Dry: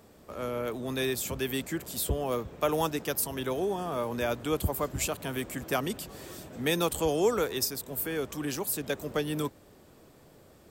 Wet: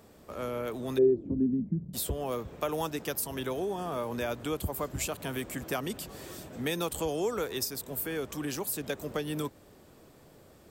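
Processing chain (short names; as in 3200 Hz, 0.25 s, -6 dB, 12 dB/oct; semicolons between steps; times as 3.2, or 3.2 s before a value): compressor 2:1, threshold -31 dBFS, peak gain reduction 6.5 dB; 0.97–1.93 synth low-pass 400 Hz -> 160 Hz, resonance Q 6.2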